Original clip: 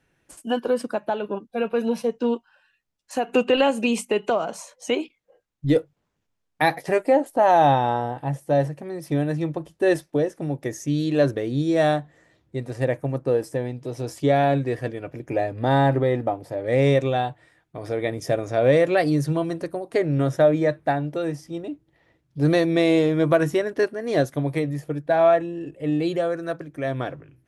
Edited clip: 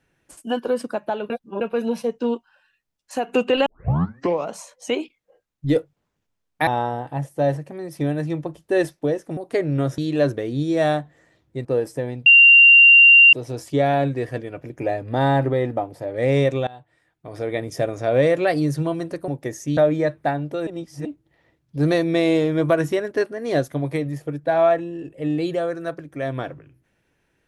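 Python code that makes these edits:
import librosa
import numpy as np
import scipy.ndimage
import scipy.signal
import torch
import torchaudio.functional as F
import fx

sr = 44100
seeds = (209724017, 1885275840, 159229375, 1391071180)

y = fx.edit(x, sr, fx.reverse_span(start_s=1.3, length_s=0.31),
    fx.tape_start(start_s=3.66, length_s=0.85),
    fx.cut(start_s=6.67, length_s=1.11),
    fx.swap(start_s=10.48, length_s=0.49, other_s=19.78, other_length_s=0.61),
    fx.cut(start_s=12.64, length_s=0.58),
    fx.insert_tone(at_s=13.83, length_s=1.07, hz=2770.0, db=-6.5),
    fx.fade_in_from(start_s=17.17, length_s=0.81, floor_db=-21.5),
    fx.reverse_span(start_s=21.29, length_s=0.38), tone=tone)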